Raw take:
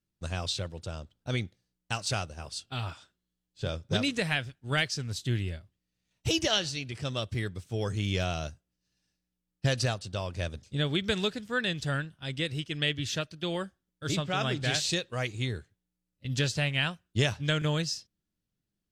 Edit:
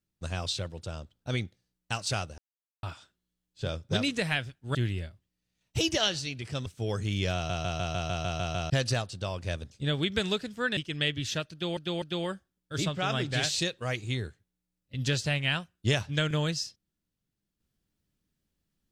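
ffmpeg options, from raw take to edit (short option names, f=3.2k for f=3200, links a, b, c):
-filter_complex "[0:a]asplit=17[a][b][c][d][e][f][g][h][i][j][k][l][m][n][o][p][q];[a]atrim=end=2.38,asetpts=PTS-STARTPTS,afade=t=out:st=2.376:d=0.004:c=hsin[r];[b]atrim=start=2.38:end=2.83,asetpts=PTS-STARTPTS,volume=0[s];[c]atrim=start=2.83:end=4.752,asetpts=PTS-STARTPTS,afade=t=in:d=0.004:c=hsin[t];[d]atrim=start=5.248:end=7.162[u];[e]atrim=start=7.578:end=8.422[v];[f]atrim=start=8.268:end=8.422[w];[g]atrim=start=8.268:end=8.422[x];[h]atrim=start=8.268:end=8.422[y];[i]atrim=start=8.268:end=8.422[z];[j]atrim=start=8.268:end=8.422[aa];[k]atrim=start=8.268:end=8.422[ab];[l]atrim=start=8.268:end=8.422[ac];[m]atrim=start=8.268:end=8.422[ad];[n]atrim=start=9.618:end=11.692[ae];[o]atrim=start=12.578:end=13.582[af];[p]atrim=start=13.328:end=13.582[ag];[q]atrim=start=13.328[ah];[r][s][t]concat=n=3:v=0:a=1[ai];[ai][u]acrossfade=d=0.004:c1=hsin:c2=hsin[aj];[aj][v]acrossfade=d=0.004:c1=hsin:c2=hsin[ak];[ak][w]acrossfade=d=0.004:c1=hsin:c2=hsin[al];[al][x]acrossfade=d=0.004:c1=hsin:c2=hsin[am];[am][y]acrossfade=d=0.004:c1=hsin:c2=hsin[an];[an][z]acrossfade=d=0.004:c1=hsin:c2=hsin[ao];[ao][aa]acrossfade=d=0.004:c1=hsin:c2=hsin[ap];[ap][ab]acrossfade=d=0.004:c1=hsin:c2=hsin[aq];[aq][ac]acrossfade=d=0.004:c1=hsin:c2=hsin[ar];[ar][ad]acrossfade=d=0.004:c1=hsin:c2=hsin[as];[as][ae]acrossfade=d=0.004:c1=hsin:c2=hsin[at];[at][af]acrossfade=d=0.004:c1=hsin:c2=hsin[au];[au][ag]acrossfade=d=0.004:c1=hsin:c2=hsin[av];[av][ah]acrossfade=d=0.004:c1=hsin:c2=hsin"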